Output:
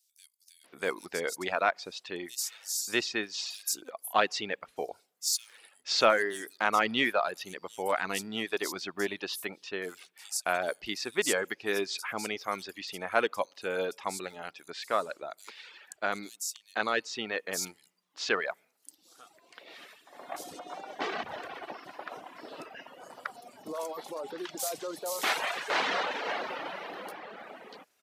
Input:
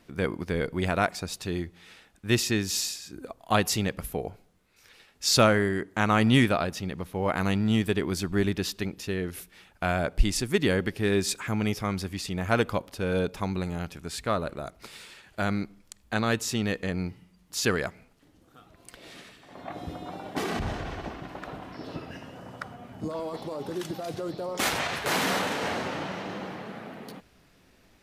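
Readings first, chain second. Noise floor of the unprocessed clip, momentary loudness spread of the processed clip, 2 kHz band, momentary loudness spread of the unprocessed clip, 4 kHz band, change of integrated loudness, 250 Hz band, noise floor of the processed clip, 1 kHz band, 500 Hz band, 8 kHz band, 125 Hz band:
−61 dBFS, 16 LU, −0.5 dB, 16 LU, −2.0 dB, −4.0 dB, −12.0 dB, −70 dBFS, −1.0 dB, −3.5 dB, −1.5 dB, −23.0 dB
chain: high-pass filter 480 Hz 12 dB per octave
reverb reduction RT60 0.84 s
in parallel at −10 dB: hard clipping −21 dBFS, distortion −11 dB
on the sum: multiband delay without the direct sound highs, lows 640 ms, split 5,200 Hz
level −1.5 dB

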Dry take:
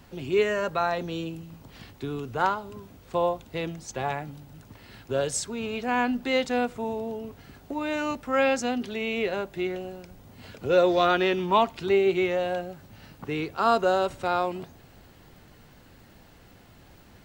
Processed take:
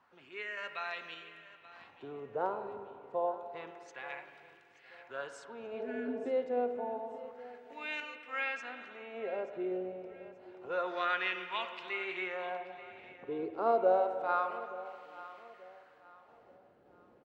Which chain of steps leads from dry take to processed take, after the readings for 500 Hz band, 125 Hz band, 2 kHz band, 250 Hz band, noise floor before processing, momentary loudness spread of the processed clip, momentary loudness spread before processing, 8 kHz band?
−9.5 dB, below −20 dB, −7.0 dB, −14.5 dB, −53 dBFS, 18 LU, 18 LU, below −25 dB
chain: LFO wah 0.28 Hz 460–2,500 Hz, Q 2.2
healed spectral selection 0:05.80–0:06.23, 330–1,300 Hz before
sample-and-hold tremolo
repeating echo 881 ms, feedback 33%, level −17 dB
spring reverb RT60 2.3 s, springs 43/49 ms, chirp 55 ms, DRR 8 dB

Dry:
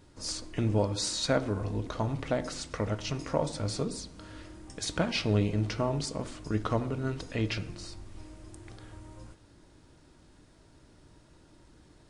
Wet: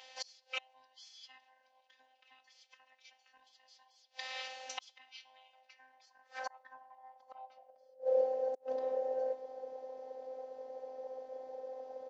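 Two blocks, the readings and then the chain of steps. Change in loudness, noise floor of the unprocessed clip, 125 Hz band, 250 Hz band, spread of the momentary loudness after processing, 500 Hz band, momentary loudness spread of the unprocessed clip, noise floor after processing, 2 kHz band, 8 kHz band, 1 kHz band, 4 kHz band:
−8.0 dB, −59 dBFS, below −40 dB, −30.0 dB, 21 LU, −3.5 dB, 21 LU, −72 dBFS, −8.5 dB, −17.0 dB, −7.0 dB, −11.5 dB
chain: neighbouring bands swapped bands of 500 Hz
parametric band 5,300 Hz +7 dB 0.88 octaves
gate with flip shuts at −30 dBFS, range −34 dB
phases set to zero 259 Hz
band-pass filter sweep 2,700 Hz → 450 Hz, 0:05.47–0:08.24
downsampling to 16,000 Hz
level +17.5 dB

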